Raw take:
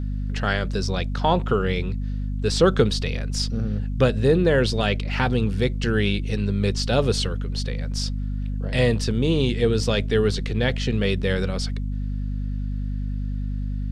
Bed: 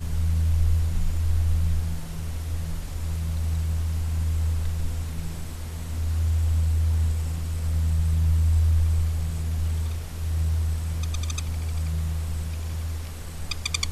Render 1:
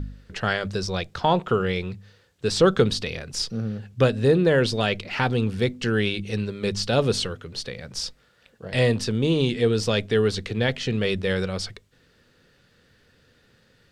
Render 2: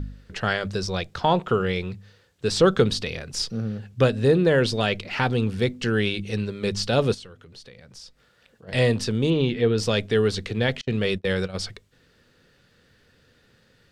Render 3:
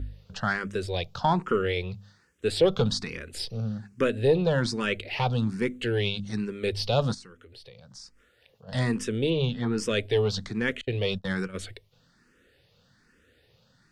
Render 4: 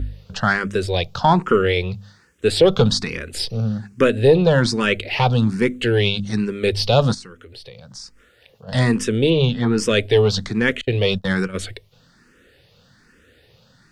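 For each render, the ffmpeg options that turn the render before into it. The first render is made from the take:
ffmpeg -i in.wav -af "bandreject=frequency=50:width_type=h:width=4,bandreject=frequency=100:width_type=h:width=4,bandreject=frequency=150:width_type=h:width=4,bandreject=frequency=200:width_type=h:width=4,bandreject=frequency=250:width_type=h:width=4" out.wav
ffmpeg -i in.wav -filter_complex "[0:a]asplit=3[link_01][link_02][link_03];[link_01]afade=type=out:start_time=7.13:duration=0.02[link_04];[link_02]acompressor=threshold=-52dB:ratio=2:attack=3.2:release=140:knee=1:detection=peak,afade=type=in:start_time=7.13:duration=0.02,afade=type=out:start_time=8.67:duration=0.02[link_05];[link_03]afade=type=in:start_time=8.67:duration=0.02[link_06];[link_04][link_05][link_06]amix=inputs=3:normalize=0,asettb=1/sr,asplit=3[link_07][link_08][link_09];[link_07]atrim=end=9.304[link_10];[link_08]atrim=start=9.3:end=9.78,asetpts=PTS-STARTPTS,afade=type=in:duration=0.004:curve=qsin,afade=type=out:start_time=0.476:duration=0.004:curve=qsin,lowpass=3400[link_11];[link_09]atrim=start=9.776[link_12];[link_10][link_11]acrossfade=duration=0.004:curve1=hsin:curve2=qsin[link_13];[link_13][link_12]acrossfade=duration=0.004:curve1=qsin:curve2=hsin,asettb=1/sr,asplit=3[link_14][link_15][link_16];[link_14]atrim=end=10.814[link_17];[link_15]atrim=start=10.81:end=11.55,asetpts=PTS-STARTPTS,afade=type=in:duration=0.004:curve=qsin,afade=type=out:start_time=0.736:duration=0.004:curve=qsin,agate=range=-34dB:threshold=-28dB:ratio=16:release=100:detection=peak[link_18];[link_16]atrim=start=11.546[link_19];[link_17][link_18]acrossfade=duration=0.004:curve1=hsin:curve2=qsin[link_20];[link_20][link_19]acrossfade=duration=0.004:curve1=qsin:curve2=hsin" out.wav
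ffmpeg -i in.wav -filter_complex "[0:a]aeval=exprs='(tanh(3.16*val(0)+0.25)-tanh(0.25))/3.16':channel_layout=same,asplit=2[link_01][link_02];[link_02]afreqshift=1.2[link_03];[link_01][link_03]amix=inputs=2:normalize=1" out.wav
ffmpeg -i in.wav -af "volume=9dB,alimiter=limit=-3dB:level=0:latency=1" out.wav

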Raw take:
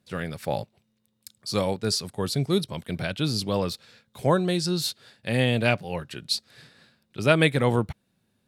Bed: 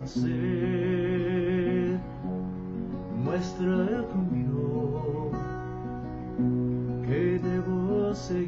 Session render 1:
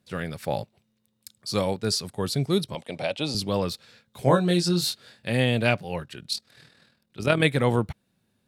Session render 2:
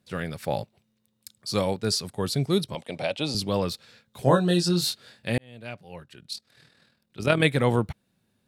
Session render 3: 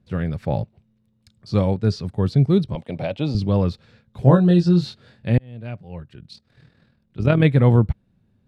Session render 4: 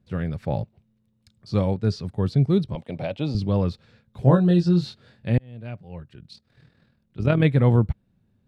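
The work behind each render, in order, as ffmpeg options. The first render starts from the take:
ffmpeg -i in.wav -filter_complex "[0:a]asettb=1/sr,asplit=3[link_01][link_02][link_03];[link_01]atrim=end=2.754[link_04];[link_02]atrim=start=2.75:end=3.35,asetpts=PTS-STARTPTS,afade=type=in:duration=0.004:curve=qsin,afade=type=out:start_time=0.596:duration=0.004:curve=qsin,highpass=190,equalizer=frequency=190:width_type=q:width=4:gain=-7,equalizer=frequency=360:width_type=q:width=4:gain=-4,equalizer=frequency=560:width_type=q:width=4:gain=8,equalizer=frequency=810:width_type=q:width=4:gain=8,equalizer=frequency=1500:width_type=q:width=4:gain=-8,equalizer=frequency=2600:width_type=q:width=4:gain=3,lowpass=frequency=9800:width=0.5412,lowpass=frequency=9800:width=1.3066[link_05];[link_03]atrim=start=3.346[link_06];[link_04][link_05]acrossfade=duration=0.004:curve1=hsin:curve2=qsin[link_07];[link_07][link_06]acrossfade=duration=0.004:curve1=qsin:curve2=hsin,asettb=1/sr,asplit=3[link_08][link_09][link_10];[link_08]atrim=end=4.244[link_11];[link_09]atrim=start=4.24:end=5.3,asetpts=PTS-STARTPTS,afade=type=in:duration=0.004:curve=qsin,afade=type=out:start_time=1.056:duration=0.004:curve=qsin,asplit=2[link_12][link_13];[link_13]adelay=23,volume=-3.5dB[link_14];[link_12][link_14]amix=inputs=2:normalize=0,atrim=end_sample=46746[link_15];[link_10]atrim=start=5.296[link_16];[link_11][link_15]acrossfade=duration=0.004:curve1=hsin:curve2=qsin[link_17];[link_17][link_16]acrossfade=duration=0.004:curve1=qsin:curve2=hsin,asplit=3[link_18][link_19][link_20];[link_18]afade=type=out:start_time=6.04:duration=0.02[link_21];[link_19]tremolo=f=40:d=0.571,afade=type=in:start_time=6.04:duration=0.02,afade=type=out:start_time=7.43:duration=0.02[link_22];[link_20]afade=type=in:start_time=7.43:duration=0.02[link_23];[link_21][link_22][link_23]amix=inputs=3:normalize=0" out.wav
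ffmpeg -i in.wav -filter_complex "[0:a]asettb=1/sr,asplit=3[link_01][link_02][link_03];[link_01]atrim=end=4.224[link_04];[link_02]atrim=start=4.22:end=4.7,asetpts=PTS-STARTPTS,afade=type=in:duration=0.004:curve=qsin,afade=type=out:start_time=0.476:duration=0.004:curve=qsin,asuperstop=centerf=2200:order=12:qfactor=5.6[link_05];[link_03]atrim=start=4.696[link_06];[link_04][link_05]acrossfade=duration=0.004:curve1=hsin:curve2=qsin[link_07];[link_07][link_06]acrossfade=duration=0.004:curve1=qsin:curve2=hsin,asplit=2[link_08][link_09];[link_08]atrim=end=5.38,asetpts=PTS-STARTPTS,afade=type=out:start_time=5.376:duration=0.004:curve=hsin[link_10];[link_09]atrim=start=5.38,asetpts=PTS-STARTPTS,afade=type=in:duration=1.92[link_11];[link_10][link_11]concat=n=2:v=0:a=1" out.wav
ffmpeg -i in.wav -filter_complex "[0:a]aemphasis=mode=reproduction:type=riaa,acrossover=split=6600[link_01][link_02];[link_02]acompressor=threshold=-58dB:ratio=4:attack=1:release=60[link_03];[link_01][link_03]amix=inputs=2:normalize=0" out.wav
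ffmpeg -i in.wav -af "volume=-3dB" out.wav

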